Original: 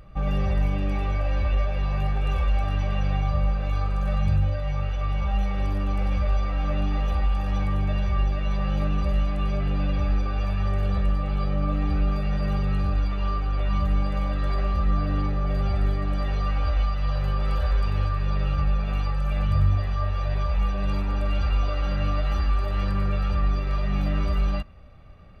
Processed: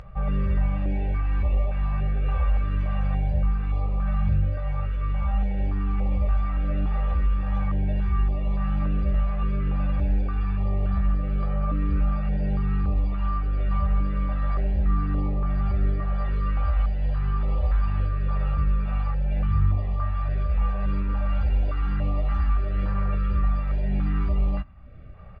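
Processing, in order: low-pass 1.9 kHz 12 dB/octave; upward compressor, threshold -35 dBFS; doubling 16 ms -13.5 dB; step-sequenced notch 3.5 Hz 290–1500 Hz

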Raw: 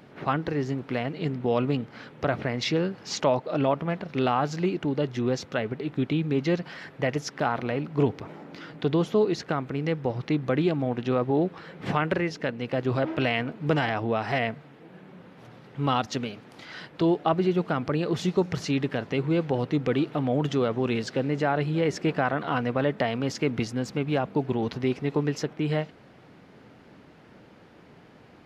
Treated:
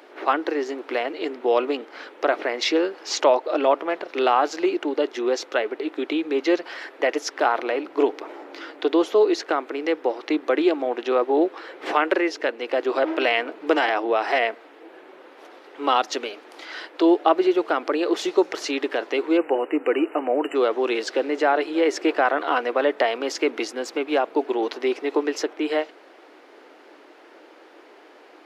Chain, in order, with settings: spectral selection erased 19.37–20.56 s, 3–7.2 kHz; elliptic high-pass 320 Hz, stop band 60 dB; trim +6.5 dB

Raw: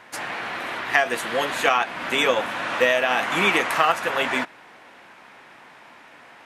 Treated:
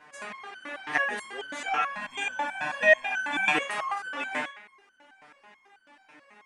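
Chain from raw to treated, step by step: fifteen-band graphic EQ 100 Hz -7 dB, 250 Hz +4 dB, 4 kHz -4 dB; resampled via 22.05 kHz; 1.90–3.52 s: comb 1.2 ms, depth 91%; band-passed feedback delay 71 ms, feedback 59%, band-pass 1.8 kHz, level -7.5 dB; resonator arpeggio 9.2 Hz 150–1500 Hz; trim +5.5 dB

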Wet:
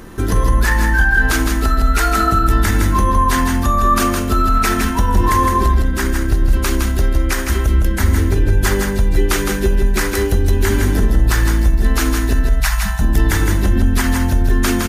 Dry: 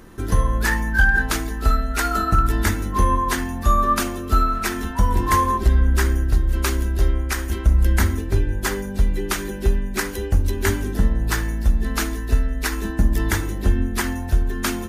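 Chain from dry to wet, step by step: 12.44–13.01 s: Chebyshev band-stop 200–620 Hz, order 5; peak limiter -15.5 dBFS, peak gain reduction 9.5 dB; on a send: delay 161 ms -5 dB; on the sum: trim +8.5 dB

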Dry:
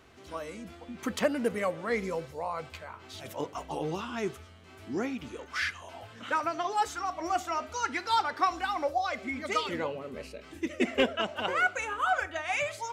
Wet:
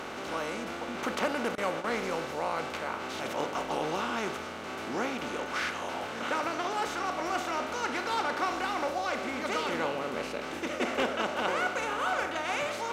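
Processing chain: spectral levelling over time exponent 0.4; 1.55–2.00 s: gate with hold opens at -14 dBFS; trim -8 dB

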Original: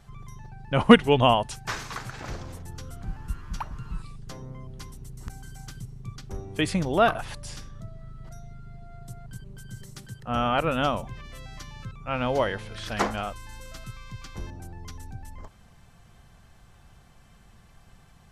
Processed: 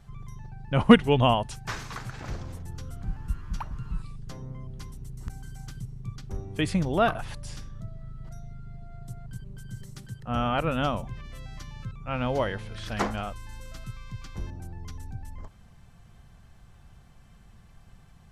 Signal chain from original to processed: tone controls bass +5 dB, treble -1 dB; trim -3 dB

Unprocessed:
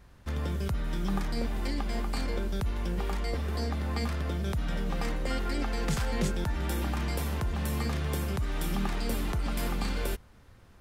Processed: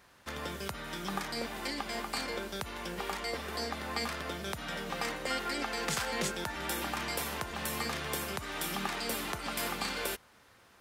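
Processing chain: high-pass 790 Hz 6 dB/octave; trim +4 dB

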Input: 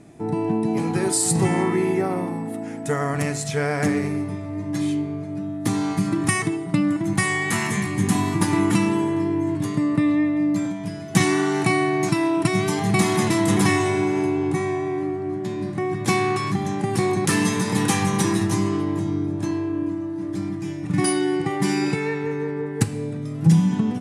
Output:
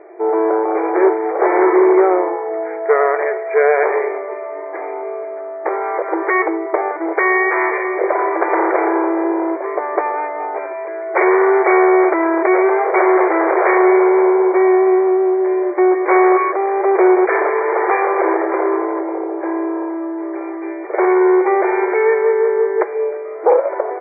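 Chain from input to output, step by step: tilt shelf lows +3.5 dB; sine folder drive 19 dB, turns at 5 dBFS; brick-wall FIR band-pass 340–2400 Hz; distance through air 190 m; trim -9.5 dB

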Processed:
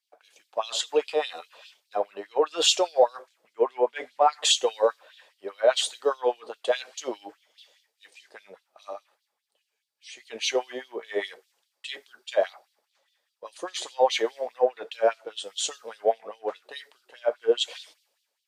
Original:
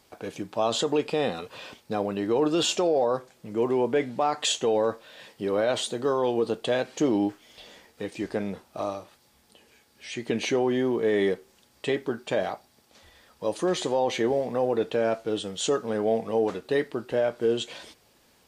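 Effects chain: LFO high-pass sine 4.9 Hz 490–3800 Hz; three bands expanded up and down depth 70%; trim -3 dB

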